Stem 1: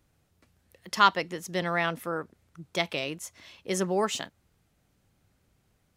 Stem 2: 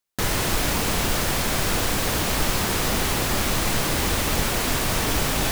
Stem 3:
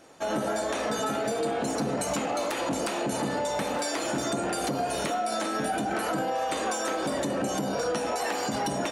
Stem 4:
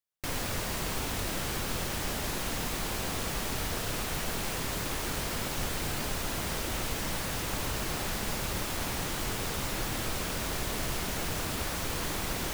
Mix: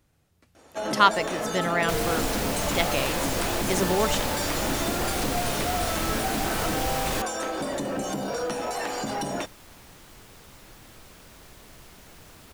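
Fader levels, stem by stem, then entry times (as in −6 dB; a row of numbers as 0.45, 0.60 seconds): +2.0, −6.5, −1.0, −16.0 decibels; 0.00, 1.70, 0.55, 0.90 seconds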